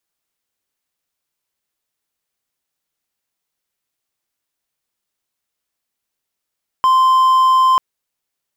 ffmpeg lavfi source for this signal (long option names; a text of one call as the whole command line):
ffmpeg -f lavfi -i "aevalsrc='0.447*(1-4*abs(mod(1040*t+0.25,1)-0.5))':duration=0.94:sample_rate=44100" out.wav